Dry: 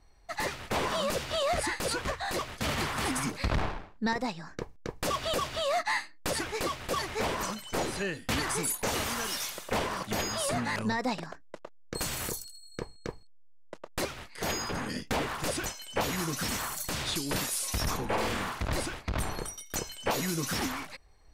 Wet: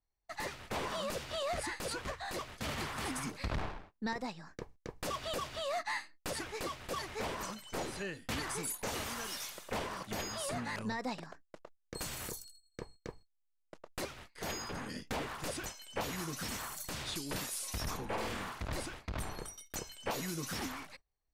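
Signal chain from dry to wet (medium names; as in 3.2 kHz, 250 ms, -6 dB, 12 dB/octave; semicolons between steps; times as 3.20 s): gate -46 dBFS, range -20 dB; trim -7.5 dB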